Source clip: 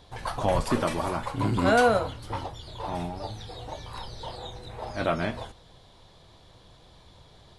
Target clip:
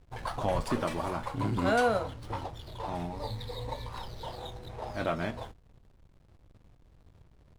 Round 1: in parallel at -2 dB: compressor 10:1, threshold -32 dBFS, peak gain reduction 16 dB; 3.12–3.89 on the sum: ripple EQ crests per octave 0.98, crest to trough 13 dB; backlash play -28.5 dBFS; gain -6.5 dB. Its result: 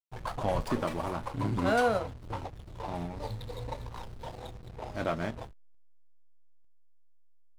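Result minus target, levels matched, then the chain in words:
backlash: distortion +8 dB
in parallel at -2 dB: compressor 10:1, threshold -32 dBFS, peak gain reduction 16 dB; 3.12–3.89 on the sum: ripple EQ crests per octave 0.98, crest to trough 13 dB; backlash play -38 dBFS; gain -6.5 dB

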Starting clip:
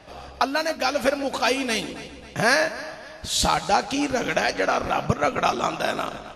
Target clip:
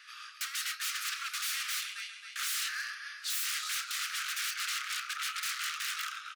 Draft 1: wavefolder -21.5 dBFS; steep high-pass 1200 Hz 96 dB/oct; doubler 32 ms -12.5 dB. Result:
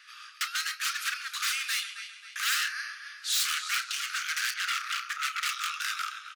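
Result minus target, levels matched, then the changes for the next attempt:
wavefolder: distortion -11 dB
change: wavefolder -28.5 dBFS

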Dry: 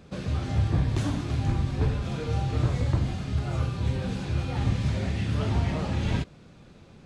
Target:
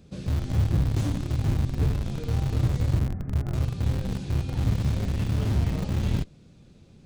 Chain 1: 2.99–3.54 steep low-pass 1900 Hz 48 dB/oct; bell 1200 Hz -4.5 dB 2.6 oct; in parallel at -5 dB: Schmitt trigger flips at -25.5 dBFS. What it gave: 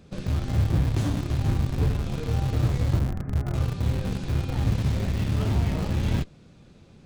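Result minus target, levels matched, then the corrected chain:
1000 Hz band +2.5 dB
2.99–3.54 steep low-pass 1900 Hz 48 dB/oct; bell 1200 Hz -11 dB 2.6 oct; in parallel at -5 dB: Schmitt trigger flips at -25.5 dBFS

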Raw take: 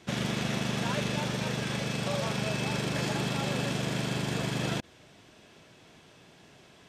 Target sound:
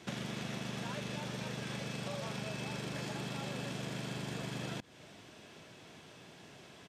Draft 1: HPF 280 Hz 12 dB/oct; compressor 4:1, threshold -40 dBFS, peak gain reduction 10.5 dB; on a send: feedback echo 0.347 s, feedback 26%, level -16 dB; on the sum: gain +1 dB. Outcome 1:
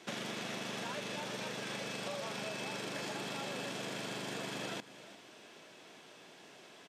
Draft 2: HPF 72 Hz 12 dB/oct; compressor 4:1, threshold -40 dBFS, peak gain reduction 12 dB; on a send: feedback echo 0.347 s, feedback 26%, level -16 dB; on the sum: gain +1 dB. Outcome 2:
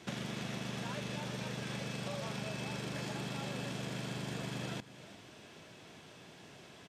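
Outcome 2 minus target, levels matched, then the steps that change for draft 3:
echo-to-direct +10 dB
change: feedback echo 0.347 s, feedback 26%, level -26 dB

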